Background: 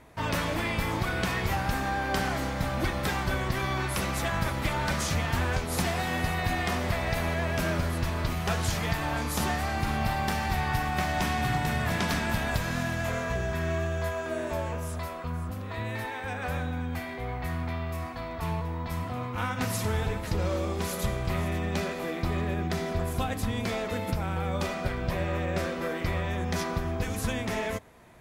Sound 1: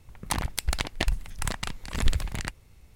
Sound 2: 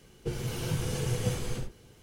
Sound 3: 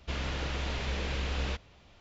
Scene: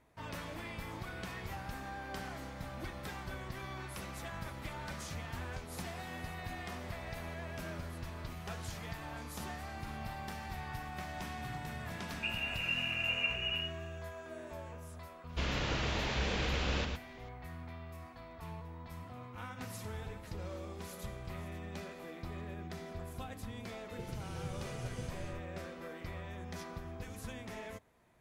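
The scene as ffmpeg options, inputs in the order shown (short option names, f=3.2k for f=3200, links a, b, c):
-filter_complex "[2:a]asplit=2[a][b];[0:a]volume=-14.5dB[c];[a]lowpass=f=2.5k:t=q:w=0.5098,lowpass=f=2.5k:t=q:w=0.6013,lowpass=f=2.5k:t=q:w=0.9,lowpass=f=2.5k:t=q:w=2.563,afreqshift=-2900[d];[3:a]aecho=1:1:111:0.531[e];[b]lowpass=10k[f];[d]atrim=end=2.02,asetpts=PTS-STARTPTS,volume=-5dB,afade=t=in:d=0.004:c=hsin,afade=t=out:st=2.016:d=0.004:c=hsin,adelay=11970[g];[e]atrim=end=2,asetpts=PTS-STARTPTS,afade=t=in:d=0.004:c=hsin,afade=t=out:st=1.996:d=0.004:c=hsin,adelay=15290[h];[f]atrim=end=2.02,asetpts=PTS-STARTPTS,volume=-13dB,afade=t=in:d=0.004:c=hsin,afade=t=out:st=2.016:d=0.004:c=hsin,adelay=1046052S[i];[c][g][h][i]amix=inputs=4:normalize=0"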